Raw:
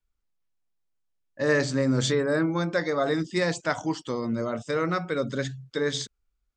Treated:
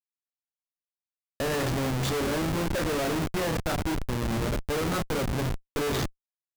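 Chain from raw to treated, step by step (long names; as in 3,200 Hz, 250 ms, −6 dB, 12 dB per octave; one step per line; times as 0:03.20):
double-tracking delay 32 ms −5.5 dB
echo with shifted repeats 102 ms, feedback 39%, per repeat −54 Hz, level −14 dB
comparator with hysteresis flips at −27.5 dBFS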